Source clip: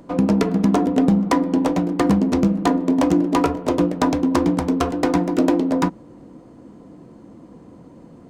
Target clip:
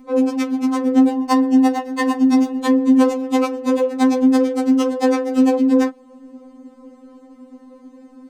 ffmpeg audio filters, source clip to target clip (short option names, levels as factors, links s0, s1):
-filter_complex "[0:a]asettb=1/sr,asplit=3[s0][s1][s2];[s0]atrim=end=1.094[s3];[s1]atrim=start=1.09:end=2.59,asetpts=PTS-STARTPTS,afade=t=in:d=0.004:c=qsin,afade=t=out:st=1.496:d=0.004:c=qsin,aecho=1:1:2.8:0.72,atrim=end_sample=66150[s4];[s2]atrim=start=2.586[s5];[s3][s4]acrossfade=d=0.004:c1=hsin:c2=qsin[s6];[s6][s5]acrossfade=d=0.004:c1=qsin:c2=hsin,asettb=1/sr,asplit=3[s7][s8][s9];[s7]atrim=end=4.304[s10];[s8]atrim=start=4.3:end=4.83,asetpts=PTS-STARTPTS,afade=t=in:d=0.004:c=qsin,afade=t=out:st=0.526:d=0.004:c=qsin,equalizer=f=1000:w=7:g=-9.5[s11];[s9]atrim=start=4.826[s12];[s10][s11]acrossfade=d=0.004:c1=hsin:c2=qsin[s13];[s13][s12]acrossfade=d=0.004:c1=qsin:c2=hsin,acrossover=split=270|4400[s14][s15][s16];[s14]acompressor=threshold=0.0316:ratio=8[s17];[s17][s15][s16]amix=inputs=3:normalize=0,asoftclip=type=hard:threshold=0.562,afftfilt=real='re*3.46*eq(mod(b,12),0)':imag='im*3.46*eq(mod(b,12),0)':win_size=2048:overlap=0.75,volume=1.33"